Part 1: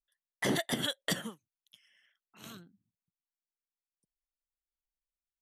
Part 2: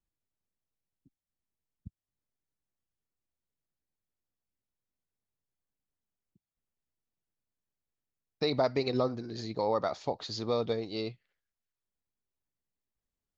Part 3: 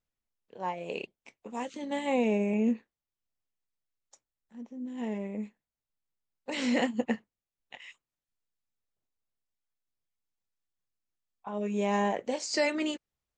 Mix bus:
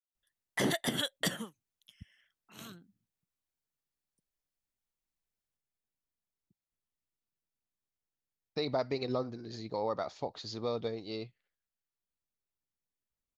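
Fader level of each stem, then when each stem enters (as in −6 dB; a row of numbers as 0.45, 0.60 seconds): 0.0 dB, −4.5 dB, muted; 0.15 s, 0.15 s, muted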